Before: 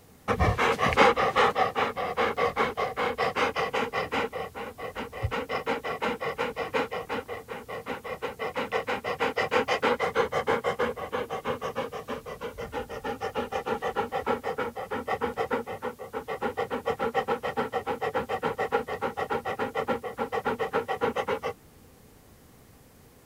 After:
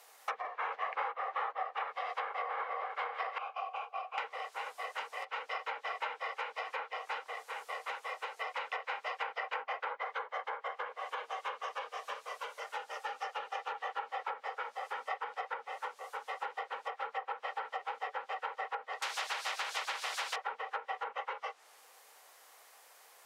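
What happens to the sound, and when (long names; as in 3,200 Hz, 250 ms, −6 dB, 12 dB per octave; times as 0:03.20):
0:02.03–0:02.56: delay throw 310 ms, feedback 50%, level 0 dB
0:03.38–0:04.18: formant filter a
0:19.02–0:20.36: every bin compressed towards the loudest bin 4 to 1
whole clip: treble cut that deepens with the level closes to 1,600 Hz, closed at −21.5 dBFS; downward compressor 4 to 1, threshold −34 dBFS; high-pass filter 670 Hz 24 dB per octave; level +1 dB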